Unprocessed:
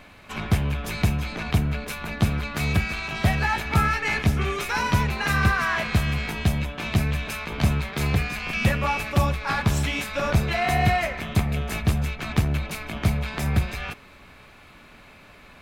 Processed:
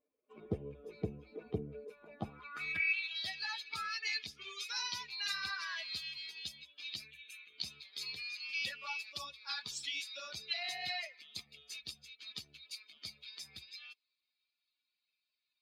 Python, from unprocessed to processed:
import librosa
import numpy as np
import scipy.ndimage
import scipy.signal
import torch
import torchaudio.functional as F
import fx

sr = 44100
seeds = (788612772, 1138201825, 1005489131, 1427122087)

y = fx.bin_expand(x, sr, power=2.0)
y = fx.fixed_phaser(y, sr, hz=2100.0, stages=4, at=(7.06, 7.57), fade=0.02)
y = fx.filter_sweep_bandpass(y, sr, from_hz=460.0, to_hz=4500.0, start_s=1.94, end_s=3.24, q=3.7)
y = y * librosa.db_to_amplitude(6.5)